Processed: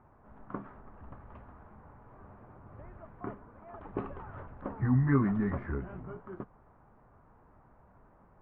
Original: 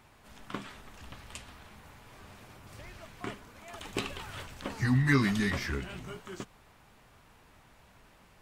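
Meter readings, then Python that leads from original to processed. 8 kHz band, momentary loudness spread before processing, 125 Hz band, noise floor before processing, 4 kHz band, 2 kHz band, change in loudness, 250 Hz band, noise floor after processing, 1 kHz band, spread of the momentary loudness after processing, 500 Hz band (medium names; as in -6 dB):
under -30 dB, 25 LU, 0.0 dB, -60 dBFS, under -30 dB, -11.0 dB, -1.0 dB, 0.0 dB, -61 dBFS, -1.5 dB, 24 LU, 0.0 dB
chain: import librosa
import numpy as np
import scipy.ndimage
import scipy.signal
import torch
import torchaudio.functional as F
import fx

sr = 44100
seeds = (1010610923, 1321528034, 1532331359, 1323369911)

y = scipy.signal.sosfilt(scipy.signal.butter(4, 1300.0, 'lowpass', fs=sr, output='sos'), x)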